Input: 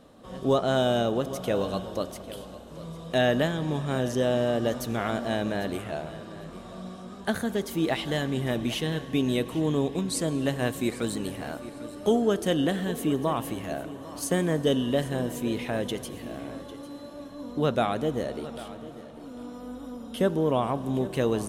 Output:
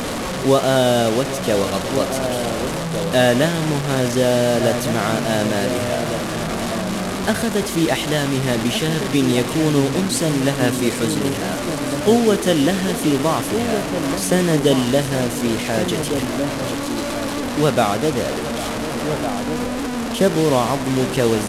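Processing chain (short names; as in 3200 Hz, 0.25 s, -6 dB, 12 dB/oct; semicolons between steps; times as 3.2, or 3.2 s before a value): delta modulation 64 kbps, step -26.5 dBFS; outdoor echo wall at 250 m, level -7 dB; gain +8 dB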